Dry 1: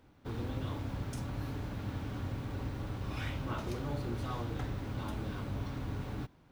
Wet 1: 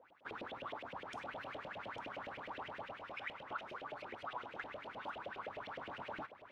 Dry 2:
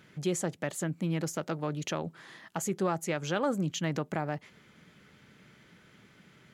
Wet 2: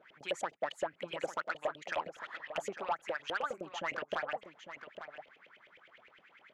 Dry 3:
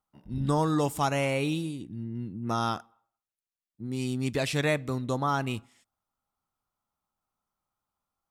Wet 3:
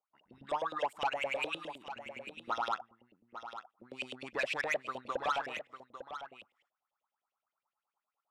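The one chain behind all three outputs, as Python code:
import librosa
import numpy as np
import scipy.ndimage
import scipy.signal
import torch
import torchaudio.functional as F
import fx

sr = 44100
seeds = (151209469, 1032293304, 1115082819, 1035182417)

y = fx.hpss(x, sr, part='harmonic', gain_db=-9)
y = fx.filter_lfo_bandpass(y, sr, shape='saw_up', hz=9.7, low_hz=500.0, high_hz=3200.0, q=7.0)
y = fx.rider(y, sr, range_db=4, speed_s=0.5)
y = 10.0 ** (-39.0 / 20.0) * np.tanh(y / 10.0 ** (-39.0 / 20.0))
y = y + 10.0 ** (-11.0 / 20.0) * np.pad(y, (int(850 * sr / 1000.0), 0))[:len(y)]
y = y * 10.0 ** (13.5 / 20.0)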